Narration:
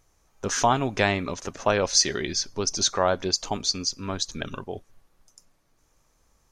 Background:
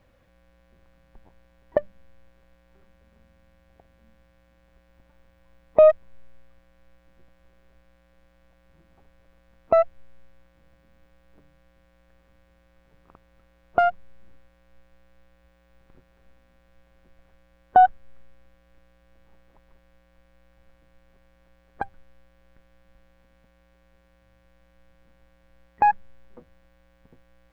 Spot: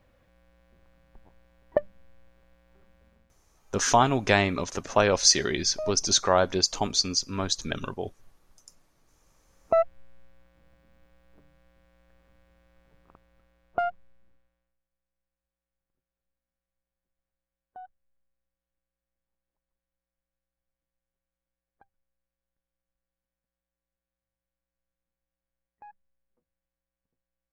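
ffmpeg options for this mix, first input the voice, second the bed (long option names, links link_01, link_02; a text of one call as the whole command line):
ffmpeg -i stem1.wav -i stem2.wav -filter_complex "[0:a]adelay=3300,volume=1dB[link_01];[1:a]volume=16.5dB,afade=type=out:start_time=3.07:duration=0.34:silence=0.11885,afade=type=in:start_time=9.2:duration=0.72:silence=0.11885,afade=type=out:start_time=12.82:duration=1.95:silence=0.0354813[link_02];[link_01][link_02]amix=inputs=2:normalize=0" out.wav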